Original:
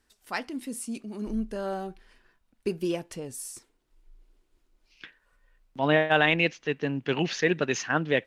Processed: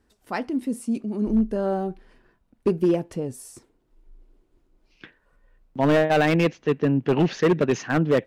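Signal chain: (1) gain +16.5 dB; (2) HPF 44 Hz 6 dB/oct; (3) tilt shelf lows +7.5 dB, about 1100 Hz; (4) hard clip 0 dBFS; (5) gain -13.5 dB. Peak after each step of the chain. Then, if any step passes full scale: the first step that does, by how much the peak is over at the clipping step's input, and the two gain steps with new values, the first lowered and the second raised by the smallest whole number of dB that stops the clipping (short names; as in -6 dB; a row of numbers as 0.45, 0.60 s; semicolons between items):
+9.0, +9.0, +10.0, 0.0, -13.5 dBFS; step 1, 10.0 dB; step 1 +6.5 dB, step 5 -3.5 dB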